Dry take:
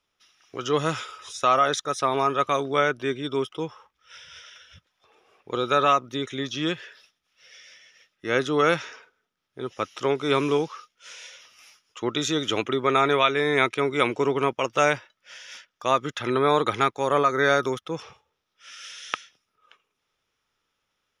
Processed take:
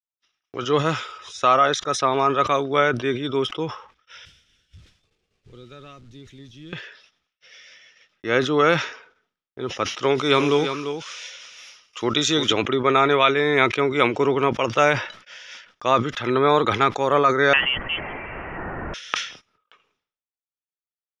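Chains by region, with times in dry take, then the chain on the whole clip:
0:04.25–0:06.73: converter with a step at zero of −31 dBFS + guitar amp tone stack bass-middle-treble 10-0-1
0:10.03–0:12.53: high-shelf EQ 3,100 Hz +8.5 dB + single-tap delay 344 ms −9 dB
0:17.53–0:18.94: spike at every zero crossing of −15 dBFS + voice inversion scrambler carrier 3,200 Hz
whole clip: noise gate −56 dBFS, range −35 dB; low-pass filter 5,300 Hz 12 dB per octave; level that may fall only so fast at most 110 dB per second; level +3 dB

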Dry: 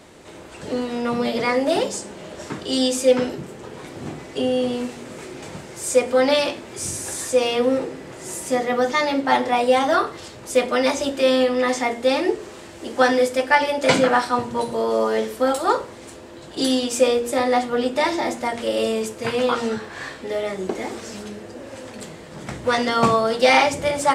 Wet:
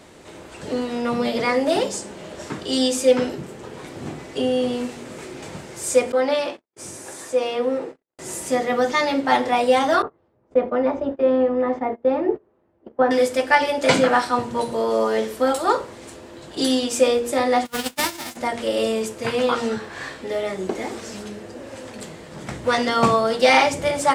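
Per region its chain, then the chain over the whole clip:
0:06.12–0:08.19: high-pass filter 380 Hz 6 dB per octave + noise gate −35 dBFS, range −56 dB + high-shelf EQ 2,100 Hz −10 dB
0:10.02–0:13.11: noise gate −29 dBFS, range −23 dB + low-pass filter 1,000 Hz
0:17.65–0:18.35: spectral envelope flattened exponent 0.3 + downward expander −16 dBFS
whole clip: no processing

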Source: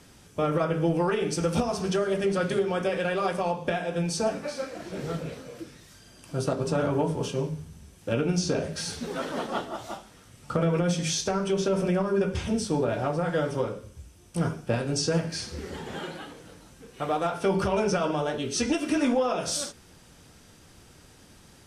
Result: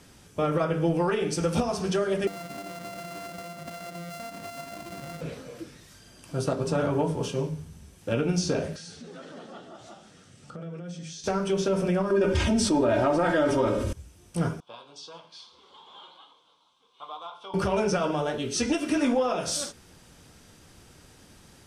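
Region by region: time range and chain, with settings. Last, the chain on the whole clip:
0:02.27–0:05.21: samples sorted by size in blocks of 64 samples + downward compressor 16 to 1, threshold −34 dBFS + notch comb filter 430 Hz
0:08.76–0:11.24: downward compressor 2.5 to 1, threshold −45 dBFS + loudspeaker in its box 100–8,800 Hz, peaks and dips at 170 Hz +4 dB, 970 Hz −8 dB, 2,200 Hz −3 dB
0:12.10–0:13.93: high-shelf EQ 8,600 Hz −8 dB + comb filter 3.2 ms, depth 71% + envelope flattener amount 70%
0:14.60–0:17.54: pair of resonant band-passes 1,900 Hz, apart 1.7 octaves + parametric band 2,100 Hz +11.5 dB 0.22 octaves
whole clip: no processing

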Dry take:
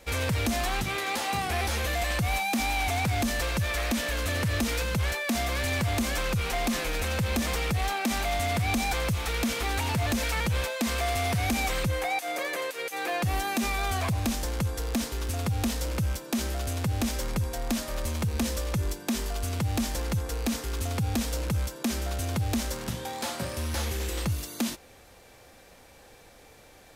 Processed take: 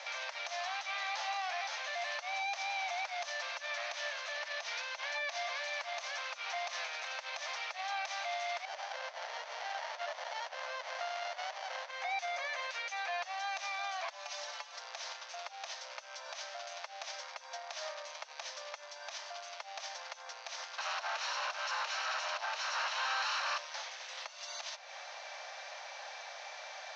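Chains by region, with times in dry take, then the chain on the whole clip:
0:04.35–0:05.58: band-pass filter 160–7,800 Hz + notch filter 1,300 Hz, Q 17
0:08.65–0:11.91: high-pass filter 280 Hz + windowed peak hold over 33 samples
0:14.10–0:14.79: linear delta modulator 64 kbit/s, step −32.5 dBFS + stiff-string resonator 87 Hz, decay 0.2 s, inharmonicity 0.008
0:20.78–0:23.58: lower of the sound and its delayed copy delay 0.72 ms + mid-hump overdrive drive 31 dB, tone 2,900 Hz, clips at −19 dBFS
whole clip: downward compressor 4 to 1, threshold −42 dBFS; brickwall limiter −38.5 dBFS; Chebyshev band-pass filter 600–6,200 Hz, order 5; level +10.5 dB

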